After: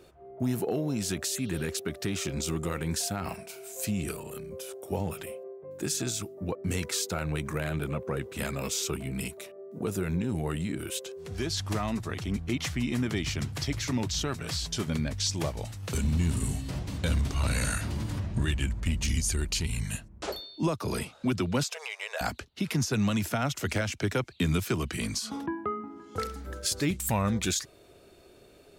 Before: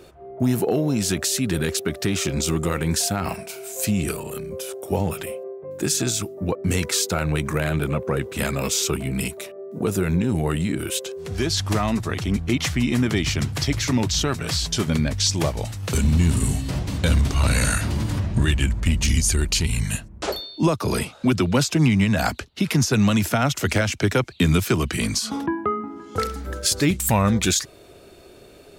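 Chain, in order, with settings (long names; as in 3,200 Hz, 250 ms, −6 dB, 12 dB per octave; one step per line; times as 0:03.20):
0:01.37–0:01.66: healed spectral selection 2,700–6,200 Hz after
0:21.63–0:22.21: linear-phase brick-wall high-pass 420 Hz
level −8.5 dB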